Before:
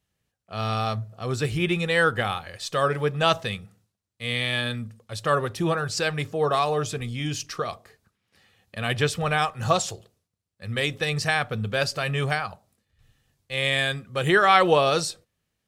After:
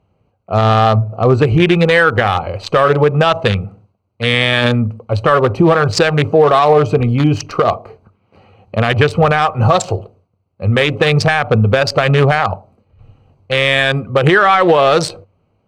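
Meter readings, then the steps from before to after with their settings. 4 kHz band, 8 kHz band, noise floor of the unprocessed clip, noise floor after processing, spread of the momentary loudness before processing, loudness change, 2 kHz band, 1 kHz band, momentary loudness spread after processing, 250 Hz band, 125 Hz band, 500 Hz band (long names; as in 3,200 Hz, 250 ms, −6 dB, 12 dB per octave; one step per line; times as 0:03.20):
+8.5 dB, +3.5 dB, −80 dBFS, −63 dBFS, 12 LU, +11.5 dB, +10.0 dB, +11.0 dB, 9 LU, +14.0 dB, +14.5 dB, +13.0 dB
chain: adaptive Wiener filter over 25 samples
parametric band 97 Hz +9.5 dB 0.23 octaves
downward compressor, threshold −25 dBFS, peak gain reduction 12 dB
mid-hump overdrive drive 10 dB, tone 1,900 Hz, clips at −12.5 dBFS
boost into a limiter +22 dB
level −1 dB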